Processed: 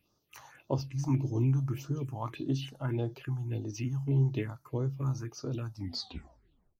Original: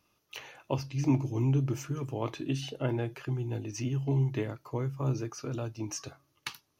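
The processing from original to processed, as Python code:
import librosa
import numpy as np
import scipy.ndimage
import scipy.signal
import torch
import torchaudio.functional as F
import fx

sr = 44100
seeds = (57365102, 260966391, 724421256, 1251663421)

y = fx.tape_stop_end(x, sr, length_s=1.08)
y = fx.phaser_stages(y, sr, stages=4, low_hz=380.0, high_hz=2500.0, hz=1.7, feedback_pct=25)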